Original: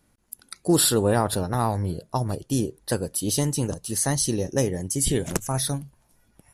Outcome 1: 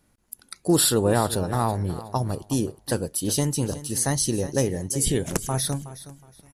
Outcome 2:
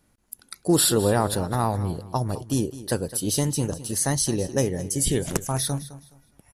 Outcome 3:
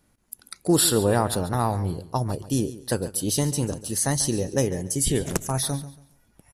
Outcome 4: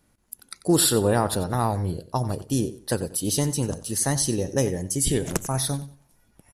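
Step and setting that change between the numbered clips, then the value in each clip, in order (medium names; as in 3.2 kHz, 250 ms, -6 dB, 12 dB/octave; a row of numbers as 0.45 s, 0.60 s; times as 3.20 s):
feedback delay, time: 368 ms, 210 ms, 140 ms, 92 ms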